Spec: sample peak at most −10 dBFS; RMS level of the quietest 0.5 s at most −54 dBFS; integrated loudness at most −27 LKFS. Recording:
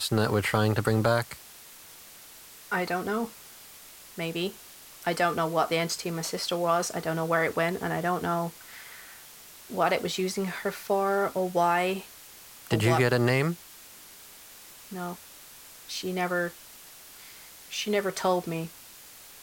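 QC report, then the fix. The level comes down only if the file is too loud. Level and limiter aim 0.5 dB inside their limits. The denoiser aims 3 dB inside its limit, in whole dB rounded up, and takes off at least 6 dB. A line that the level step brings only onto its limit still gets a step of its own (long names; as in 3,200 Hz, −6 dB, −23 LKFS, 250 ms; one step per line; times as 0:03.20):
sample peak −9.0 dBFS: out of spec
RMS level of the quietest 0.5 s −49 dBFS: out of spec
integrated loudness −28.0 LKFS: in spec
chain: broadband denoise 8 dB, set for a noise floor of −49 dBFS
brickwall limiter −10.5 dBFS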